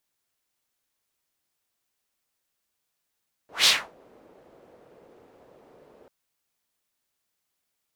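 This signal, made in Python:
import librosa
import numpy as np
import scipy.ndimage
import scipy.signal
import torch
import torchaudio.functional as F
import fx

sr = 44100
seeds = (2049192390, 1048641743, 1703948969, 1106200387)

y = fx.whoosh(sr, seeds[0], length_s=2.59, peak_s=0.17, rise_s=0.17, fall_s=0.29, ends_hz=480.0, peak_hz=4100.0, q=1.9, swell_db=37.5)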